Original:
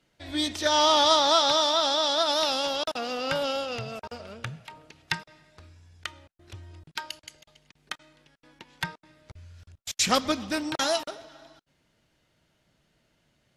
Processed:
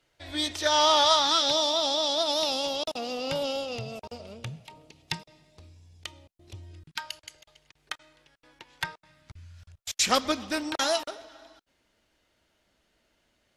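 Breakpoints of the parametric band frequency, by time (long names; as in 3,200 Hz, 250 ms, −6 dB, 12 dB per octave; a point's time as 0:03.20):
parametric band −13.5 dB 0.82 octaves
0:01.00 200 Hz
0:01.56 1,500 Hz
0:06.63 1,500 Hz
0:07.21 200 Hz
0:08.85 200 Hz
0:09.39 600 Hz
0:10.03 140 Hz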